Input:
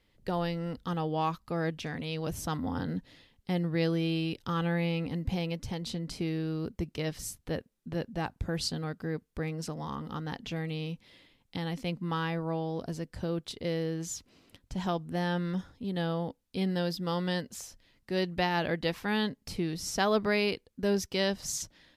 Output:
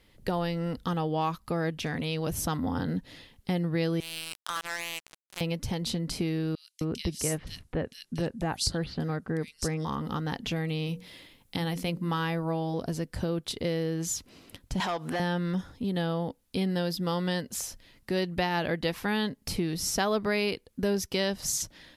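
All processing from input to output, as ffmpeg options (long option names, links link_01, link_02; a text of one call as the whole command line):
ffmpeg -i in.wav -filter_complex "[0:a]asettb=1/sr,asplit=3[link_01][link_02][link_03];[link_01]atrim=end=4.004[link_04];[link_02]atrim=start=4:end=5.41,asetpts=PTS-STARTPTS,afade=type=in:duration=0.004:curve=qsin,afade=type=out:start_time=1.406:duration=0.004:curve=qsin,highpass=1300,aemphasis=mode=reproduction:type=cd,acrusher=bits=5:mix=0:aa=0.5[link_05];[link_03]atrim=start=5.406[link_06];[link_04][link_05]acrossfade=duration=0.004:curve1=hsin:curve2=qsin[link_07];[link_07][link_06]acrossfade=duration=0.004:curve1=qsin:curve2=hsin,asettb=1/sr,asplit=3[link_08][link_09][link_10];[link_08]atrim=end=6.554[link_11];[link_09]atrim=start=6.55:end=9.85,asetpts=PTS-STARTPTS,afade=type=in:duration=0.004:curve=qsin,afade=type=out:start_time=3.296:duration=0.004:curve=qsin,lowpass=frequency=11000:width=0.5412,lowpass=frequency=11000:width=1.3066,acrossover=split=2800[link_12][link_13];[link_12]adelay=260[link_14];[link_14][link_13]amix=inputs=2:normalize=0,atrim=end_sample=145530,adynamicequalizer=threshold=0.002:dfrequency=4000:dqfactor=0.7:tfrequency=4000:tqfactor=0.7:attack=5:release=100:ratio=0.375:range=1.5:mode=boostabove:tftype=highshelf[link_15];[link_10]atrim=start=9.846[link_16];[link_11][link_15]acrossfade=duration=0.004:curve1=hsin:curve2=qsin[link_17];[link_17][link_16]acrossfade=duration=0.004:curve1=qsin:curve2=hsin,asettb=1/sr,asplit=3[link_18][link_19][link_20];[link_18]atrim=end=10.874[link_21];[link_19]atrim=start=10.87:end=12.74,asetpts=PTS-STARTPTS,afade=type=in:duration=0.004:curve=qsin,afade=type=out:start_time=1.866:duration=0.004:curve=qsin,highshelf=frequency=9600:gain=7.5,bandreject=frequency=60:width_type=h:width=6,bandreject=frequency=120:width_type=h:width=6,bandreject=frequency=180:width_type=h:width=6,bandreject=frequency=240:width_type=h:width=6,bandreject=frequency=300:width_type=h:width=6,bandreject=frequency=360:width_type=h:width=6,bandreject=frequency=420:width_type=h:width=6,bandreject=frequency=480:width_type=h:width=6,bandreject=frequency=540:width_type=h:width=6[link_22];[link_20]atrim=start=12.736[link_23];[link_21][link_22]acrossfade=duration=0.004:curve1=hsin:curve2=qsin[link_24];[link_24][link_23]acrossfade=duration=0.004:curve1=qsin:curve2=hsin,asettb=1/sr,asplit=3[link_25][link_26][link_27];[link_25]atrim=end=14.804[link_28];[link_26]atrim=start=14.8:end=15.2,asetpts=PTS-STARTPTS,afade=type=in:duration=0.004:curve=qsin,afade=type=out:start_time=0.396:duration=0.004:curve=qsin,acompressor=threshold=-39dB:ratio=10:attack=3.2:release=140:knee=1:detection=peak,asplit=2[link_29][link_30];[link_30]highpass=frequency=720:poles=1,volume=28dB,asoftclip=type=tanh:threshold=-19.5dB[link_31];[link_29][link_31]amix=inputs=2:normalize=0,lowpass=frequency=2800:poles=1,volume=-6dB,lowshelf=frequency=430:gain=-10[link_32];[link_27]atrim=start=15.196[link_33];[link_28][link_32]acrossfade=duration=0.004:curve1=hsin:curve2=qsin[link_34];[link_34][link_33]acrossfade=duration=0.004:curve1=qsin:curve2=hsin,equalizer=frequency=11000:width=1.8:gain=6,acompressor=threshold=-38dB:ratio=2,volume=8dB" out.wav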